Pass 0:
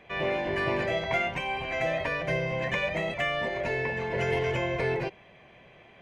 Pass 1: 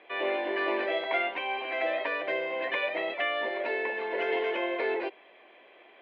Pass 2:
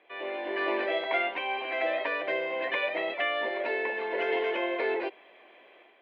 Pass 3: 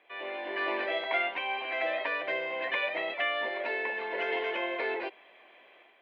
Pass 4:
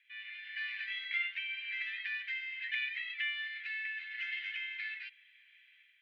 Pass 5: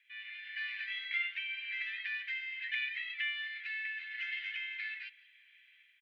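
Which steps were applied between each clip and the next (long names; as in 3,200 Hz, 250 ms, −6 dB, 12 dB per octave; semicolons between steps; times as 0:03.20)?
elliptic band-pass filter 310–3,800 Hz, stop band 40 dB
automatic gain control gain up to 7.5 dB; level −7 dB
parametric band 370 Hz −5.5 dB 1.6 octaves
Butterworth high-pass 1,700 Hz 48 dB per octave; level −3 dB
single-tap delay 173 ms −22.5 dB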